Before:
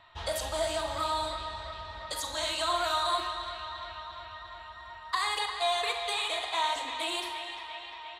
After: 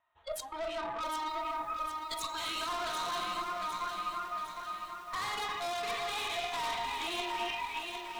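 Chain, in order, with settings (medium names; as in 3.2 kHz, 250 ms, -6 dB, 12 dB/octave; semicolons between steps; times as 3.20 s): local Wiener filter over 9 samples; tone controls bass -10 dB, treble -2 dB; on a send at -7 dB: reverberation RT60 1.1 s, pre-delay 81 ms; on the sum: spectral noise reduction 21 dB; level rider gain up to 13 dB; valve stage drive 23 dB, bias 0.55; reverse; compression 16:1, threshold -38 dBFS, peak gain reduction 15.5 dB; reverse; bit-crushed delay 756 ms, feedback 55%, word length 10-bit, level -6 dB; trim +4 dB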